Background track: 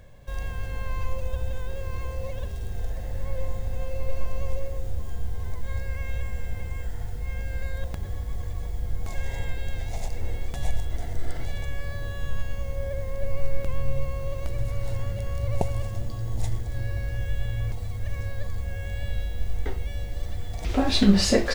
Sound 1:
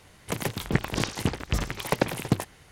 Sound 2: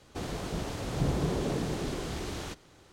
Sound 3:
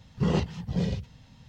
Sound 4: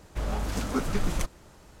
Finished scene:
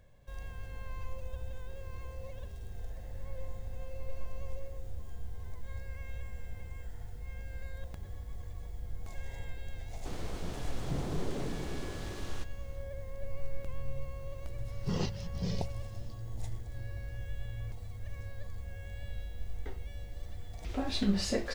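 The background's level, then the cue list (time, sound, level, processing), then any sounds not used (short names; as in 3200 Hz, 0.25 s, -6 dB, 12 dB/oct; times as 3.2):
background track -11.5 dB
9.9 add 2 -7 dB
14.66 add 3 -9 dB + bell 5300 Hz +12 dB 0.8 oct
not used: 1, 4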